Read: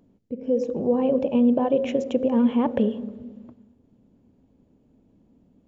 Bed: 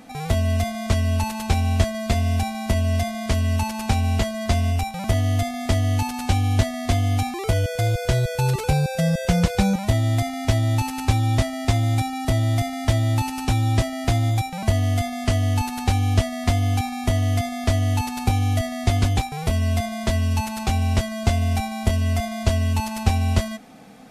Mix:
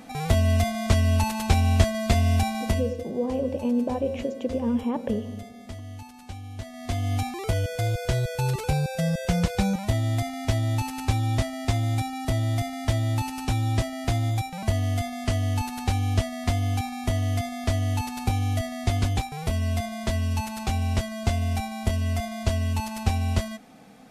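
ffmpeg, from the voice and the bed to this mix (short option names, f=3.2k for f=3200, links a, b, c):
-filter_complex "[0:a]adelay=2300,volume=-5.5dB[a];[1:a]volume=14dB,afade=t=out:st=2.6:d=0.34:silence=0.11885,afade=t=in:st=6.58:d=0.58:silence=0.199526[b];[a][b]amix=inputs=2:normalize=0"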